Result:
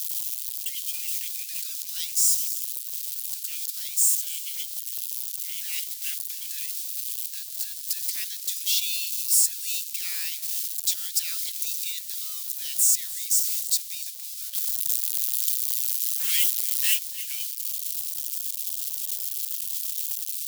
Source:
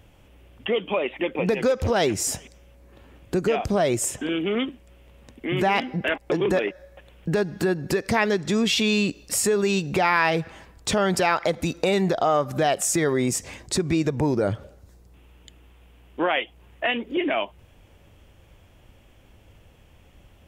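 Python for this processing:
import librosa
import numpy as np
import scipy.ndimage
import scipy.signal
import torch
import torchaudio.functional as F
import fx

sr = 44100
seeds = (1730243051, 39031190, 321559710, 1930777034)

y = x + 0.5 * 10.0 ** (-19.0 / 20.0) * np.diff(np.sign(x), prepend=np.sign(x[:1]))
y = fx.high_shelf(y, sr, hz=8500.0, db=9.0)
y = fx.leveller(y, sr, passes=5, at=(14.53, 16.99))
y = fx.ladder_highpass(y, sr, hz=3000.0, resonance_pct=25)
y = y + 10.0 ** (-19.0 / 20.0) * np.pad(y, (int(300 * sr / 1000.0), 0))[:len(y)]
y = y * 10.0 ** (1.0 / 20.0)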